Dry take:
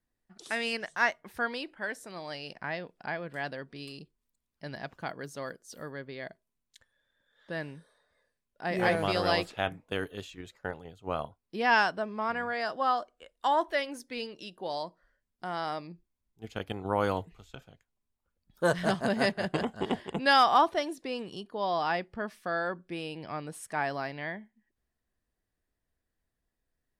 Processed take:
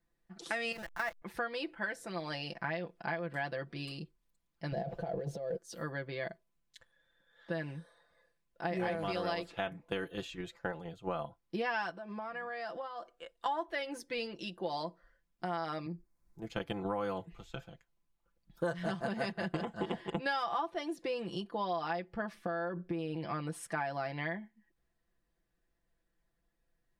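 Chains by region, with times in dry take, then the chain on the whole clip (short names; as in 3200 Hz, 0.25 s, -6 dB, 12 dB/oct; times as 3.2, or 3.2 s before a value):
0.72–1.22 level-crossing sampler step -34.5 dBFS + level quantiser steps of 15 dB
4.72–5.58 G.711 law mismatch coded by mu + EQ curve 190 Hz 0 dB, 300 Hz -7 dB, 430 Hz +7 dB, 700 Hz +5 dB, 1100 Hz -14 dB, 4100 Hz -9 dB, 6100 Hz -15 dB + negative-ratio compressor -39 dBFS
11.91–13.46 bell 62 Hz -13 dB 1.7 oct + compressor 10:1, threshold -40 dBFS
15.86–16.5 bell 3100 Hz -13.5 dB 0.69 oct + three-band squash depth 70%
22.34–23.16 tilt shelf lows +5 dB, about 1500 Hz + compressor, threshold -33 dBFS
whole clip: high shelf 5300 Hz -7.5 dB; comb 5.9 ms, depth 74%; compressor 6:1, threshold -34 dBFS; gain +1.5 dB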